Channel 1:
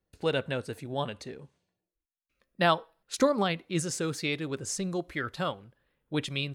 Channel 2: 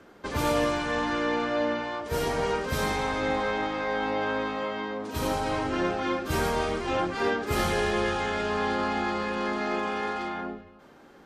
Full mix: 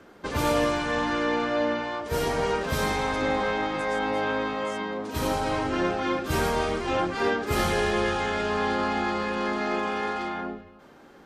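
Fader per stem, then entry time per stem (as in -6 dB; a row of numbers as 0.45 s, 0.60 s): -15.5 dB, +1.5 dB; 0.00 s, 0.00 s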